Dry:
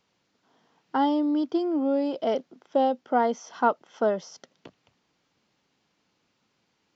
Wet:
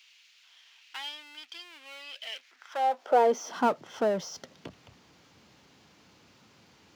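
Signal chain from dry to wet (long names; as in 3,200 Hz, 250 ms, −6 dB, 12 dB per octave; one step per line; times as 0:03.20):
power curve on the samples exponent 0.7
high-pass filter sweep 2,600 Hz → 71 Hz, 0:02.38–0:04.06
level −5.5 dB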